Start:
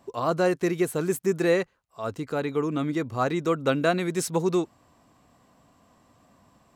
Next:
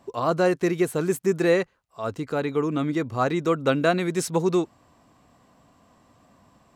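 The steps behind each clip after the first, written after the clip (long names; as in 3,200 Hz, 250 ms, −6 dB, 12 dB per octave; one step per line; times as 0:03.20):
high-shelf EQ 9,600 Hz −5 dB
level +2 dB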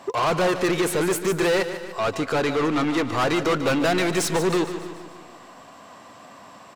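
mid-hump overdrive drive 29 dB, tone 5,800 Hz, clips at −8.5 dBFS
repeating echo 147 ms, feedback 54%, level −11.5 dB
on a send at −18 dB: convolution reverb RT60 1.1 s, pre-delay 138 ms
on the sum: level −6 dB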